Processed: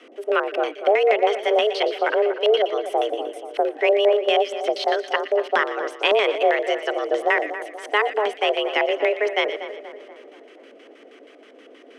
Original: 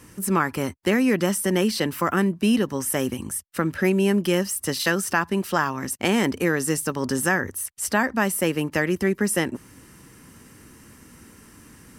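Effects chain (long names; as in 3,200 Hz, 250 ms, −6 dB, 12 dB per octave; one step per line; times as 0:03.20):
auto-filter low-pass square 6.3 Hz 500–2,900 Hz
echo with a time of its own for lows and highs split 1,600 Hz, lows 240 ms, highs 118 ms, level −11 dB
frequency shifter +210 Hz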